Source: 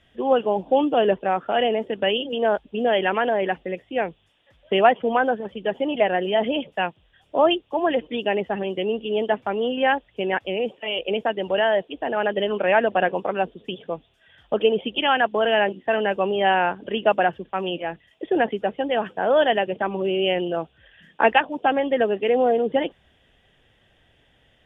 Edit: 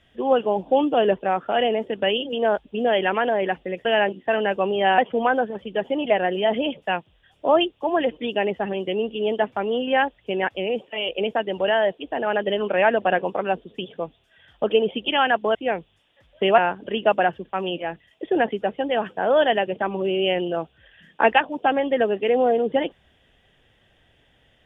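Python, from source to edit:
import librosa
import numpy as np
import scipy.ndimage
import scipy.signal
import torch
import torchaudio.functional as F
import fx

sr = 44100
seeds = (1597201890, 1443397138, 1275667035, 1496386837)

y = fx.edit(x, sr, fx.swap(start_s=3.85, length_s=1.03, other_s=15.45, other_length_s=1.13), tone=tone)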